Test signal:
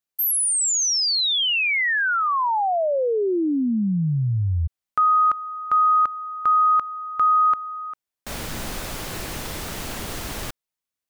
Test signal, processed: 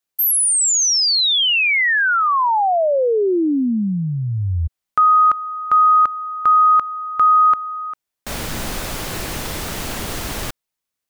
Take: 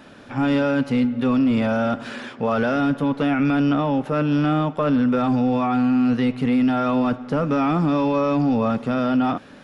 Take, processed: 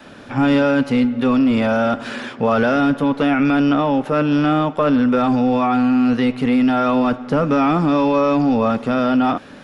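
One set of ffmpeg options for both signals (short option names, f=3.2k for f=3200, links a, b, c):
-af "adynamicequalizer=threshold=0.02:dfrequency=140:dqfactor=1.1:tfrequency=140:tqfactor=1.1:attack=5:release=100:ratio=0.375:range=3:mode=cutabove:tftype=bell,volume=5dB"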